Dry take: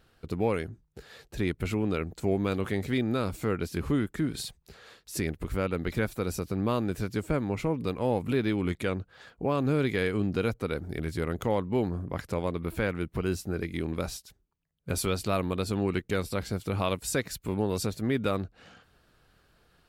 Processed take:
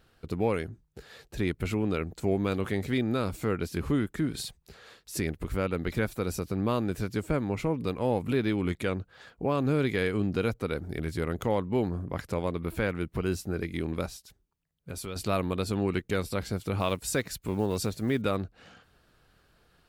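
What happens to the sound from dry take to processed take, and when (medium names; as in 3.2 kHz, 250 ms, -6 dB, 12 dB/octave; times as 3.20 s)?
14.06–15.16 s: compression 1.5:1, threshold -49 dBFS
16.80–18.23 s: block-companded coder 7-bit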